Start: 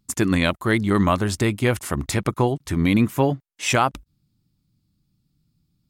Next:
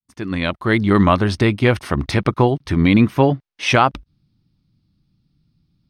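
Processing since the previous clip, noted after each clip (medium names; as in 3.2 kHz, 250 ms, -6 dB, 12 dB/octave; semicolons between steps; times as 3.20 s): fade-in on the opening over 0.89 s; Savitzky-Golay filter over 15 samples; trim +5 dB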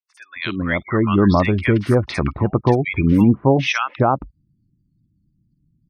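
spectral gate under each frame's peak -25 dB strong; three bands offset in time mids, highs, lows 50/270 ms, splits 1.2/5.3 kHz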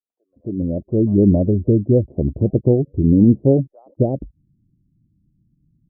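steep low-pass 590 Hz 48 dB/octave; trim +1.5 dB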